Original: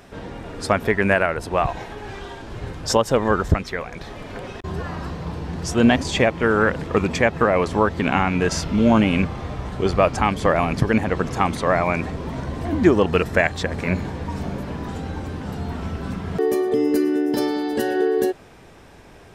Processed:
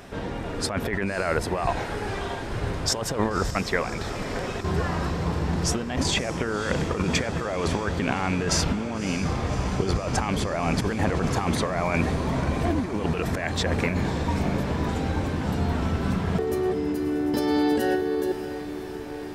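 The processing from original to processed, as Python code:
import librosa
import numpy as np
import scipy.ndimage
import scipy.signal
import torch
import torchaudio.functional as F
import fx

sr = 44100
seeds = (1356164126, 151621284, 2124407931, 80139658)

p1 = fx.over_compress(x, sr, threshold_db=-24.0, ratio=-1.0)
p2 = p1 + fx.echo_diffused(p1, sr, ms=583, feedback_pct=70, wet_db=-12, dry=0)
y = p2 * 10.0 ** (-1.0 / 20.0)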